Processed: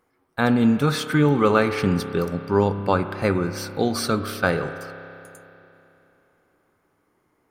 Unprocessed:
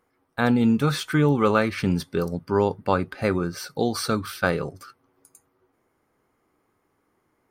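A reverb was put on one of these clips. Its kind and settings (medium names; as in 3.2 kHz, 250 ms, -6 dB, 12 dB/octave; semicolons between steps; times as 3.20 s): spring tank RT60 3.1 s, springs 30 ms, chirp 80 ms, DRR 9 dB; trim +1.5 dB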